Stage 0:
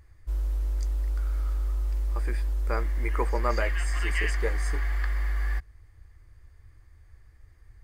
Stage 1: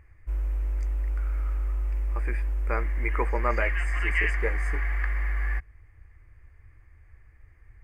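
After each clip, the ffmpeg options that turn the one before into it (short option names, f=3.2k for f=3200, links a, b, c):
-af "highshelf=f=3k:t=q:w=3:g=-8"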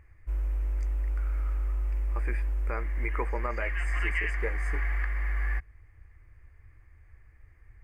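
-af "alimiter=limit=-17dB:level=0:latency=1:release=337,volume=-1.5dB"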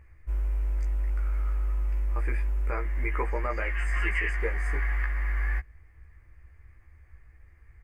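-filter_complex "[0:a]asplit=2[a][b];[b]adelay=15,volume=-4dB[c];[a][c]amix=inputs=2:normalize=0"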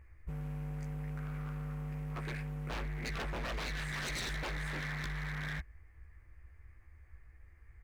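-af "aeval=exprs='0.0335*(abs(mod(val(0)/0.0335+3,4)-2)-1)':c=same,volume=-3.5dB"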